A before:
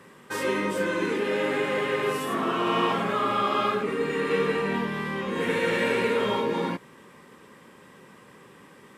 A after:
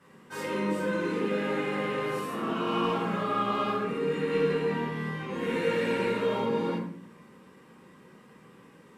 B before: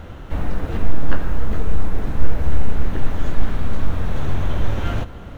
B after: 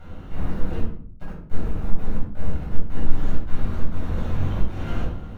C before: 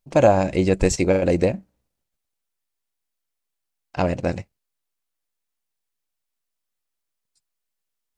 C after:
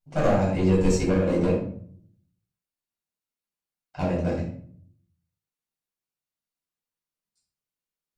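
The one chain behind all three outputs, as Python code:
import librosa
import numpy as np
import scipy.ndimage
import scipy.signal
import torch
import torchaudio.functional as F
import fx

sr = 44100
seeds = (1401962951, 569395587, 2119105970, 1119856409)

y = fx.clip_asym(x, sr, top_db=-17.0, bottom_db=-6.0)
y = fx.room_shoebox(y, sr, seeds[0], volume_m3=760.0, walls='furnished', distance_m=7.4)
y = y * librosa.db_to_amplitude(-14.5)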